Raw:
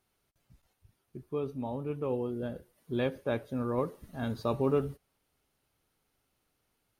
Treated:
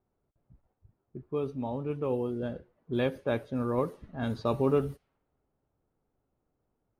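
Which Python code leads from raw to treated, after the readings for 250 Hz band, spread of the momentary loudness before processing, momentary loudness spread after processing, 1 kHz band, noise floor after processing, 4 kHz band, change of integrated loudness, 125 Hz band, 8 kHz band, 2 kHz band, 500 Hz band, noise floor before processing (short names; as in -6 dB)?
+2.0 dB, 12 LU, 12 LU, +2.0 dB, -81 dBFS, +2.0 dB, +2.0 dB, +2.0 dB, n/a, +2.0 dB, +2.0 dB, -79 dBFS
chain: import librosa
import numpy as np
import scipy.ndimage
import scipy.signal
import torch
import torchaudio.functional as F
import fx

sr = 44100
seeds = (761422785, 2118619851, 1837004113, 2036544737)

y = fx.env_lowpass(x, sr, base_hz=780.0, full_db=-28.5)
y = y * 10.0 ** (2.0 / 20.0)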